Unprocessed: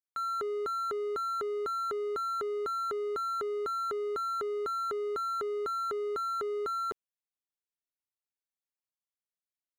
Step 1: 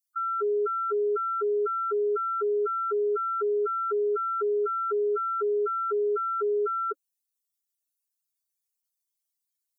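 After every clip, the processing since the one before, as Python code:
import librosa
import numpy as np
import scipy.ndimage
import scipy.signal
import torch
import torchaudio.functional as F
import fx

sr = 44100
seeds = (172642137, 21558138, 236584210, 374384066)

y = fx.high_shelf(x, sr, hz=4100.0, db=9.5)
y = fx.spec_gate(y, sr, threshold_db=-10, keep='strong')
y = y + 0.65 * np.pad(y, (int(7.2 * sr / 1000.0), 0))[:len(y)]
y = y * librosa.db_to_amplitude(3.5)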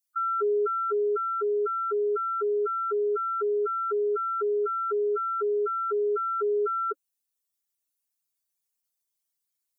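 y = fx.rider(x, sr, range_db=10, speed_s=2.0)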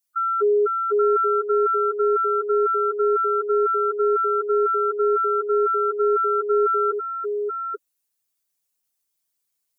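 y = x + 10.0 ** (-4.0 / 20.0) * np.pad(x, (int(832 * sr / 1000.0), 0))[:len(x)]
y = fx.upward_expand(y, sr, threshold_db=-29.0, expansion=1.5)
y = y * librosa.db_to_amplitude(6.5)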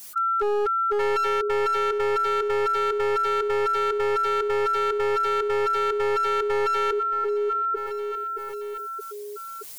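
y = np.minimum(x, 2.0 * 10.0 ** (-19.0 / 20.0) - x)
y = fx.echo_feedback(y, sr, ms=623, feedback_pct=30, wet_db=-18.5)
y = fx.env_flatten(y, sr, amount_pct=70)
y = y * librosa.db_to_amplitude(-3.5)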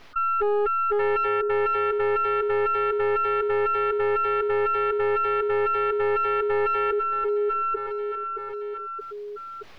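y = fx.tracing_dist(x, sr, depth_ms=0.055)
y = fx.air_absorb(y, sr, metres=310.0)
y = y * librosa.db_to_amplitude(1.5)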